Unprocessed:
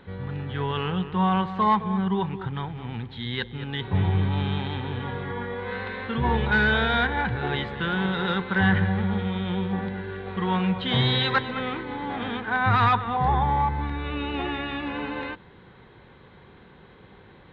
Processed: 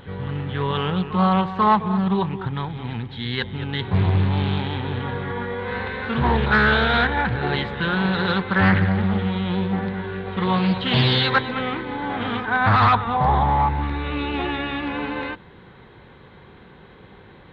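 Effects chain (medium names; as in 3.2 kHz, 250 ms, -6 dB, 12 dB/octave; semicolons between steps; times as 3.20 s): reverse echo 491 ms -18 dB; loudspeaker Doppler distortion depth 0.36 ms; trim +4 dB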